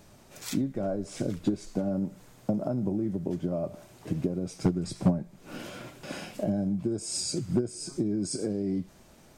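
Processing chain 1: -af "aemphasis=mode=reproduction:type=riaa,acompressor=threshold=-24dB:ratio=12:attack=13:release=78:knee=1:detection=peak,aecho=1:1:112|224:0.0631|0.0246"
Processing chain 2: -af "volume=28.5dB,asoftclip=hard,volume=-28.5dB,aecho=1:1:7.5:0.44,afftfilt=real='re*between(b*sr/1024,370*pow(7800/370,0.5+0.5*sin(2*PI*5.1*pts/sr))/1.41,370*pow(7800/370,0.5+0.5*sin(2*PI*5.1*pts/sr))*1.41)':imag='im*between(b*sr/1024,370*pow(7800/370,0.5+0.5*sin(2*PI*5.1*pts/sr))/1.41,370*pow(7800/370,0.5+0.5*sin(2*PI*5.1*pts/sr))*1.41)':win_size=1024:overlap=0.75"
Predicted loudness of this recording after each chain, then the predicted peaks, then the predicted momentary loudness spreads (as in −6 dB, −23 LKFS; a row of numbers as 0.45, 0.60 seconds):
−29.5, −44.0 LKFS; −11.5, −24.5 dBFS; 10, 13 LU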